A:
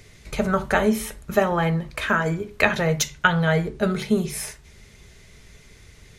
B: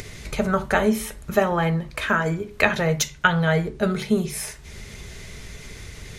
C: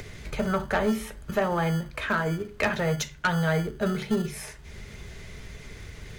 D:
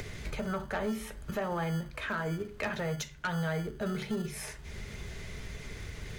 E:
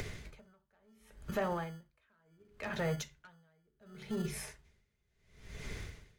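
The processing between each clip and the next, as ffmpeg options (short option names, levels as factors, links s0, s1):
-af "acompressor=mode=upward:threshold=0.0447:ratio=2.5"
-filter_complex "[0:a]highshelf=f=4100:g=-8.5,acrossover=split=220|1200[s0][s1][s2];[s0]acrusher=samples=28:mix=1:aa=0.000001[s3];[s3][s1][s2]amix=inputs=3:normalize=0,asoftclip=type=tanh:threshold=0.2,volume=0.75"
-af "alimiter=level_in=1.26:limit=0.0631:level=0:latency=1:release=407,volume=0.794"
-af "aeval=exprs='val(0)*pow(10,-39*(0.5-0.5*cos(2*PI*0.7*n/s))/20)':c=same"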